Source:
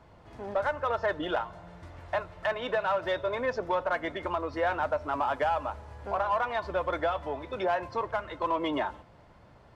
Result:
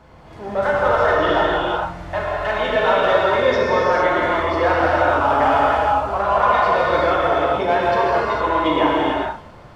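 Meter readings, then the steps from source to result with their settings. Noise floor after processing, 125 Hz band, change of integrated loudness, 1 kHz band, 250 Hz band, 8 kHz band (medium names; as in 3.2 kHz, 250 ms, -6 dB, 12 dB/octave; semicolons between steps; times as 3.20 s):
-41 dBFS, +13.5 dB, +13.0 dB, +13.5 dB, +13.5 dB, no reading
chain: transient shaper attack -4 dB, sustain +2 dB; gated-style reverb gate 490 ms flat, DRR -6.5 dB; trim +7 dB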